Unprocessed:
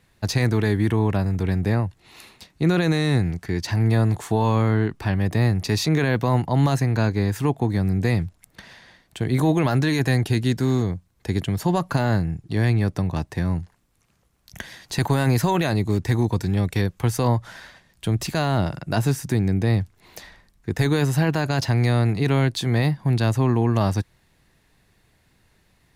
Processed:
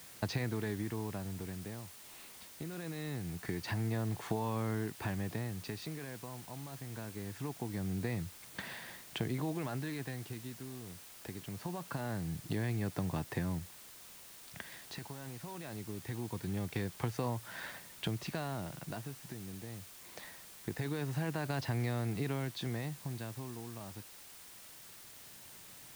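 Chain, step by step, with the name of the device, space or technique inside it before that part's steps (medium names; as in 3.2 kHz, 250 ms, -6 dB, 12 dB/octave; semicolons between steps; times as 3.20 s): medium wave at night (band-pass 110–3900 Hz; compression 6:1, threshold -34 dBFS, peak gain reduction 17.5 dB; tremolo 0.23 Hz, depth 74%; whistle 9 kHz -65 dBFS; white noise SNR 14 dB); trim +1 dB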